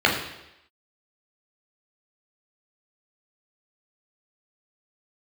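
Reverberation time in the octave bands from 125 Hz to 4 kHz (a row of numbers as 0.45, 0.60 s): 0.75, 0.85, 0.90, 0.85, 0.90, 0.90 s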